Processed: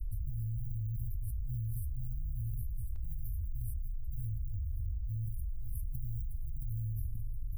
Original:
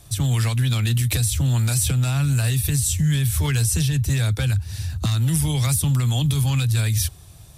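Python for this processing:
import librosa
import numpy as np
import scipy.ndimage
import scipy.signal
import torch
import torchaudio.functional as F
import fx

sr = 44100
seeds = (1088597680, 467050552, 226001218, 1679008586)

y = scipy.signal.sosfilt(scipy.signal.butter(2, 10000.0, 'lowpass', fs=sr, output='sos'), x)
y = fx.peak_eq(y, sr, hz=3600.0, db=10.0, octaves=1.9)
y = y + 10.0 ** (-18.5 / 20.0) * np.pad(y, (int(542 * sr / 1000.0), 0))[:len(y)]
y = fx.quant_float(y, sr, bits=8)
y = scipy.signal.sosfilt(scipy.signal.cheby2(4, 80, [210.0, 7400.0], 'bandstop', fs=sr, output='sos'), y)
y = fx.peak_eq(y, sr, hz=320.0, db=fx.steps((0.0, 5.5), (2.96, -11.5)), octaves=1.5)
y = fx.comb_fb(y, sr, f0_hz=110.0, decay_s=1.1, harmonics='odd', damping=0.0, mix_pct=70)
y = fx.env_flatten(y, sr, amount_pct=100)
y = F.gain(torch.from_numpy(y), 16.0).numpy()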